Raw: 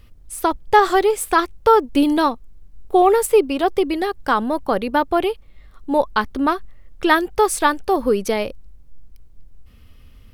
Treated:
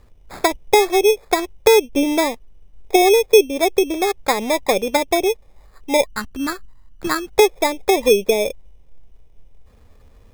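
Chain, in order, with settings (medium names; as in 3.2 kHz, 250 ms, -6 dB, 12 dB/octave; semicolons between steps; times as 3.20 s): high-order bell 650 Hz +8 dB, from 6.06 s -8.5 dB, from 7.31 s +10 dB; low-pass that closes with the level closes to 540 Hz, closed at -7.5 dBFS; sample-and-hold 15×; trim -3 dB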